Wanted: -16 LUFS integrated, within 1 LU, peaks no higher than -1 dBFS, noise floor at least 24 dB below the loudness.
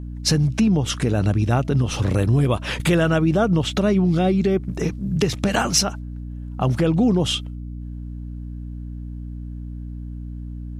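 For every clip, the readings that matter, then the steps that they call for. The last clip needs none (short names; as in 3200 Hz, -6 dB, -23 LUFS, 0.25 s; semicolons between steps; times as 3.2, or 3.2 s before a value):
hum 60 Hz; harmonics up to 300 Hz; hum level -30 dBFS; loudness -20.0 LUFS; peak -5.5 dBFS; loudness target -16.0 LUFS
-> notches 60/120/180/240/300 Hz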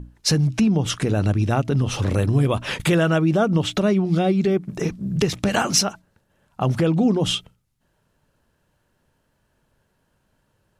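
hum none; loudness -21.0 LUFS; peak -5.0 dBFS; loudness target -16.0 LUFS
-> gain +5 dB; limiter -1 dBFS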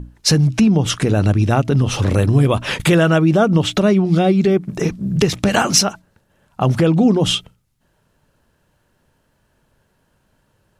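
loudness -16.0 LUFS; peak -1.0 dBFS; noise floor -64 dBFS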